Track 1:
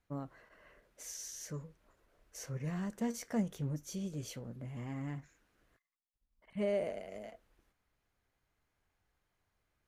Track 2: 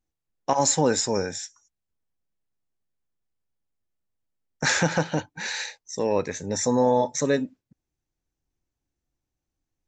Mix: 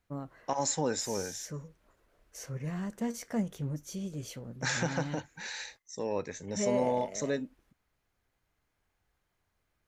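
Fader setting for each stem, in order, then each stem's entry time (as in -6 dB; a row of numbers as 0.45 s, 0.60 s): +2.0 dB, -9.5 dB; 0.00 s, 0.00 s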